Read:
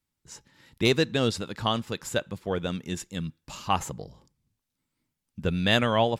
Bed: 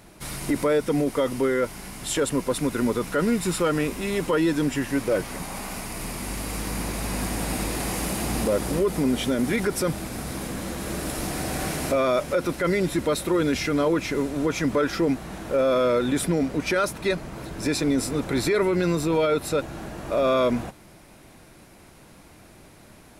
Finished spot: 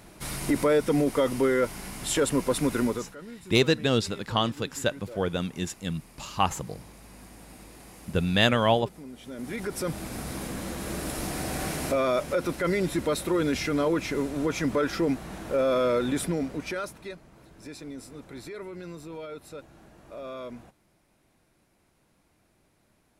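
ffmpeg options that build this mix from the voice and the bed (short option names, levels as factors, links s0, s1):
-filter_complex "[0:a]adelay=2700,volume=1.12[s0];[1:a]volume=7.08,afade=t=out:st=2.77:d=0.38:silence=0.1,afade=t=in:st=9.22:d=0.91:silence=0.133352,afade=t=out:st=16.02:d=1.15:silence=0.188365[s1];[s0][s1]amix=inputs=2:normalize=0"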